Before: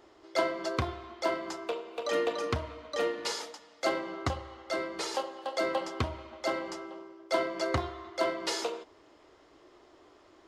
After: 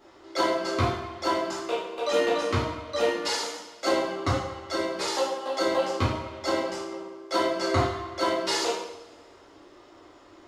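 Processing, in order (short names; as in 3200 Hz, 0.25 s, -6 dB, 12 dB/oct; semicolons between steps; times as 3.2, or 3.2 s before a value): two-slope reverb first 0.65 s, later 2 s, from -20 dB, DRR -8 dB; gain -2 dB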